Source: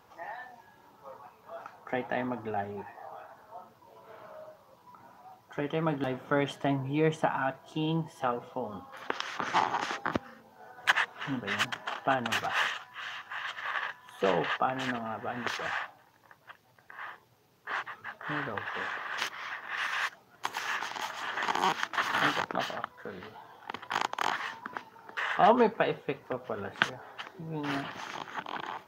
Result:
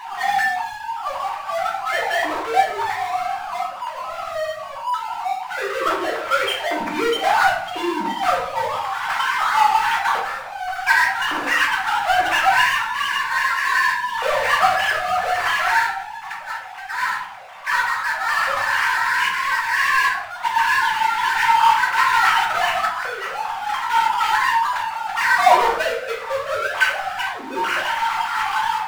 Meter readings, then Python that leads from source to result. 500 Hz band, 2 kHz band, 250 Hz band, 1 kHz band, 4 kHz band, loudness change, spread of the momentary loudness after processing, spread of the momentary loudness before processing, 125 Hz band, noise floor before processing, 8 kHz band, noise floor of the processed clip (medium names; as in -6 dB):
+7.5 dB, +15.0 dB, +0.5 dB, +15.5 dB, +12.0 dB, +12.5 dB, 10 LU, 17 LU, no reading, -61 dBFS, +14.0 dB, -33 dBFS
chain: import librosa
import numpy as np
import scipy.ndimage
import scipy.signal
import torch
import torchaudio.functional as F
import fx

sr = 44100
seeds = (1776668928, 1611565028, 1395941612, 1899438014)

y = fx.sine_speech(x, sr)
y = fx.power_curve(y, sr, exponent=0.5)
y = fx.low_shelf_res(y, sr, hz=680.0, db=-8.0, q=1.5)
y = fx.room_shoebox(y, sr, seeds[0], volume_m3=79.0, walls='mixed', distance_m=1.1)
y = F.gain(torch.from_numpy(y), -1.0).numpy()